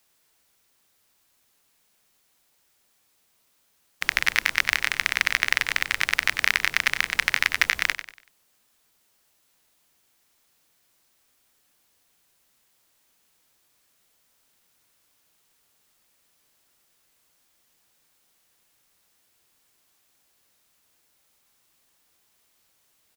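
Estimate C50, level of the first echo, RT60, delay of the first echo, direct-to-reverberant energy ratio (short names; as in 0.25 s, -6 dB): none, -11.0 dB, none, 95 ms, none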